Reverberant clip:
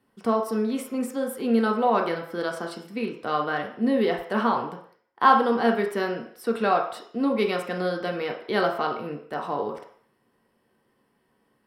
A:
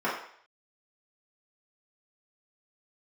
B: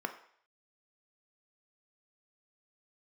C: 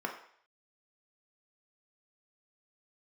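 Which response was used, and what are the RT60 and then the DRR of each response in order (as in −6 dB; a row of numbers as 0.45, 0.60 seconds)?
C; 0.60, 0.60, 0.60 seconds; −9.0, 6.0, 1.0 decibels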